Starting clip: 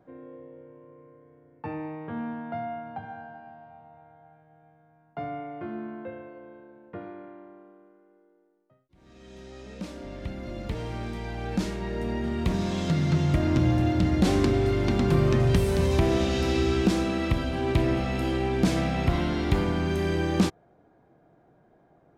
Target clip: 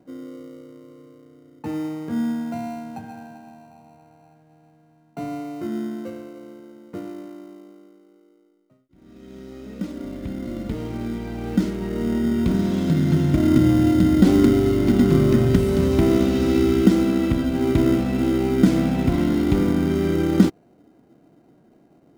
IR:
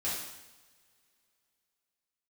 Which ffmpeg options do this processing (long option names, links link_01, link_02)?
-filter_complex "[0:a]equalizer=frequency=260:width_type=o:width=1.2:gain=12.5,asplit=2[link_01][link_02];[link_02]acrusher=samples=26:mix=1:aa=0.000001,volume=-10dB[link_03];[link_01][link_03]amix=inputs=2:normalize=0,volume=-3dB"